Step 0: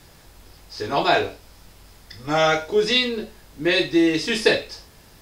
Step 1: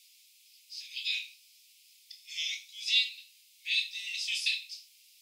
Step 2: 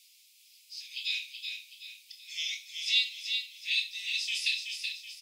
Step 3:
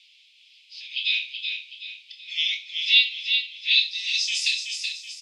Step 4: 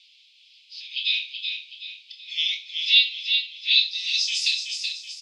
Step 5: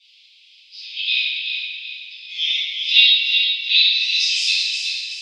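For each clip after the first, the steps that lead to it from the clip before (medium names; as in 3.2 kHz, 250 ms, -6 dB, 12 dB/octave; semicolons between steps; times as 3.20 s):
steep high-pass 2.3 kHz 72 dB/octave; trim -5.5 dB
feedback delay 377 ms, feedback 40%, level -6 dB
low-pass sweep 3.2 kHz -> 7.2 kHz, 3.56–4.41 s; trim +4 dB
FFT filter 1.9 kHz 0 dB, 4.4 kHz +8 dB, 9 kHz +1 dB; trim -5 dB
reverberation RT60 2.2 s, pre-delay 4 ms, DRR -15 dB; trim -8 dB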